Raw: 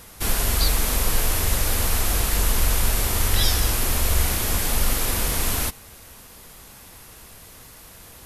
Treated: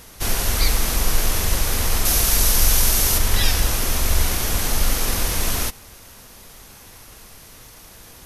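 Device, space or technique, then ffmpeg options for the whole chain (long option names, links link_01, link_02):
octave pedal: -filter_complex "[0:a]asettb=1/sr,asplit=3[link_01][link_02][link_03];[link_01]atrim=end=2.054[link_04];[link_02]atrim=start=2.05:end=3.18,asetpts=PTS-STARTPTS,afade=type=in:duration=0.004:curve=qsin,afade=type=out:start_time=1.126:duration=0.004:curve=qsin,equalizer=frequency=13000:width=0.34:gain=7.5[link_05];[link_03]atrim=start=3.176[link_06];[link_04][link_05]acrossfade=duration=0.004:curve1=hsin:curve2=qsin[link_07];[link_07][link_06]acrossfade=duration=0.004:curve1=qsin:curve2=hsin,asplit=2[link_08][link_09];[link_09]asetrate=22050,aresample=44100,atempo=2,volume=-5dB[link_10];[link_08][link_10]amix=inputs=2:normalize=0"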